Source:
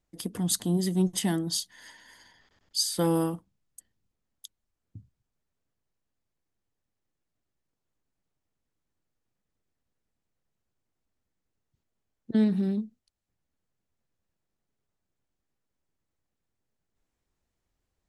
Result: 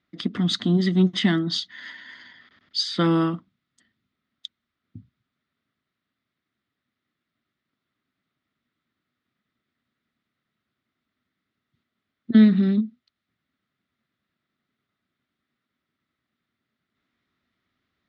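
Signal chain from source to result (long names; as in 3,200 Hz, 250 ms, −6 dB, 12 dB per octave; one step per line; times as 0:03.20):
loudspeaker in its box 120–4,500 Hz, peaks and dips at 240 Hz +7 dB, 490 Hz −8 dB, 860 Hz −9 dB, 1,300 Hz +9 dB, 2,000 Hz +8 dB, 3,600 Hz +7 dB
level +6 dB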